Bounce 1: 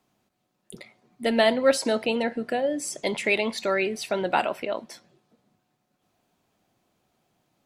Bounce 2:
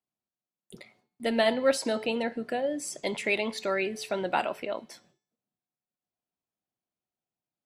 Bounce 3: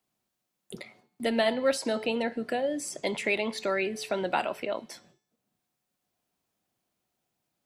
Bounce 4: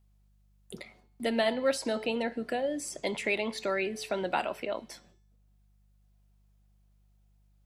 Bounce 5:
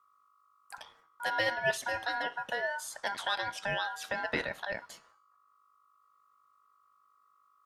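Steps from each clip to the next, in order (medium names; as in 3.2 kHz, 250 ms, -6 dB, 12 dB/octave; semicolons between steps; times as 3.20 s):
gate with hold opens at -50 dBFS; de-hum 433.9 Hz, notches 18; trim -4 dB
three bands compressed up and down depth 40%
mains buzz 50 Hz, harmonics 4, -63 dBFS -8 dB/octave; trim -2 dB
ring modulator 1.2 kHz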